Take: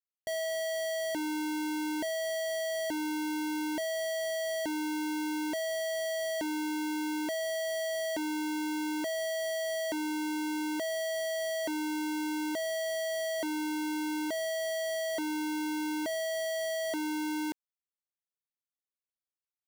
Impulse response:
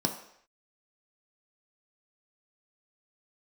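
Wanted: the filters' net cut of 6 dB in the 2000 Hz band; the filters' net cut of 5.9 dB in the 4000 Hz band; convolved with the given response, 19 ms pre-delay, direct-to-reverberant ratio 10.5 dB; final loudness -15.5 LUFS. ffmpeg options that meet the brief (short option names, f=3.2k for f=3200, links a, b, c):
-filter_complex "[0:a]equalizer=f=2k:t=o:g=-6,equalizer=f=4k:t=o:g=-5.5,asplit=2[a][b];[1:a]atrim=start_sample=2205,adelay=19[c];[b][c]afir=irnorm=-1:irlink=0,volume=-17.5dB[d];[a][d]amix=inputs=2:normalize=0,volume=17.5dB"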